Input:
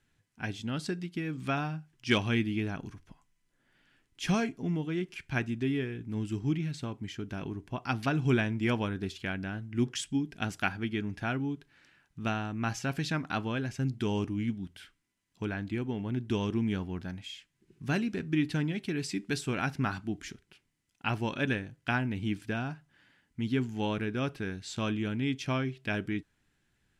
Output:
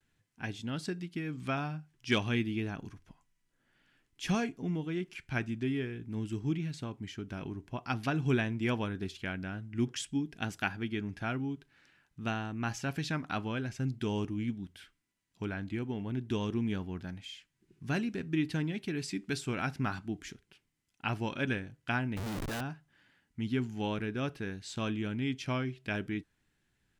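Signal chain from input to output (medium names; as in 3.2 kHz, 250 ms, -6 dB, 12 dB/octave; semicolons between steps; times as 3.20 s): 22.16–22.61 s: Schmitt trigger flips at -47.5 dBFS; vibrato 0.5 Hz 37 cents; trim -2.5 dB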